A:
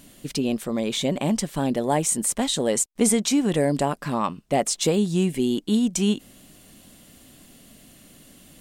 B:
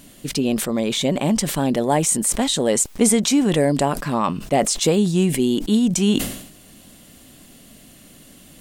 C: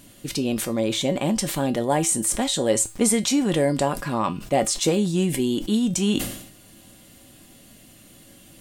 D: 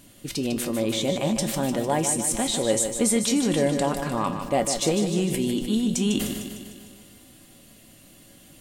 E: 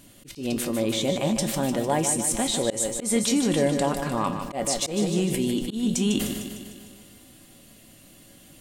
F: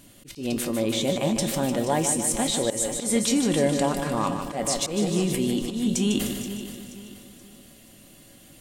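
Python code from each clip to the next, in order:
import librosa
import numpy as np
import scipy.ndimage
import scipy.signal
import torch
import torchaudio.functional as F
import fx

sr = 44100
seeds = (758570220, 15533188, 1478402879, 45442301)

y1 = fx.sustainer(x, sr, db_per_s=76.0)
y1 = y1 * librosa.db_to_amplitude(3.5)
y2 = fx.comb_fb(y1, sr, f0_hz=110.0, decay_s=0.25, harmonics='odd', damping=0.0, mix_pct=70)
y2 = y2 * librosa.db_to_amplitude(5.0)
y3 = fx.echo_feedback(y2, sr, ms=151, feedback_pct=59, wet_db=-8.0)
y3 = y3 * librosa.db_to_amplitude(-2.5)
y4 = fx.auto_swell(y3, sr, attack_ms=137.0)
y5 = fx.echo_feedback(y4, sr, ms=478, feedback_pct=39, wet_db=-13.0)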